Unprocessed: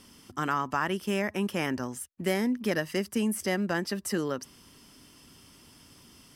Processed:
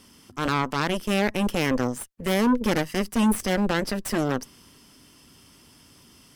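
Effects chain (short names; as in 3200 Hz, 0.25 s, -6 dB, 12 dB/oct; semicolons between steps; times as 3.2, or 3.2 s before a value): dynamic EQ 240 Hz, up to +7 dB, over -42 dBFS, Q 1.7; added harmonics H 6 -11 dB, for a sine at -13.5 dBFS; transient shaper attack -5 dB, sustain +1 dB; gain +1.5 dB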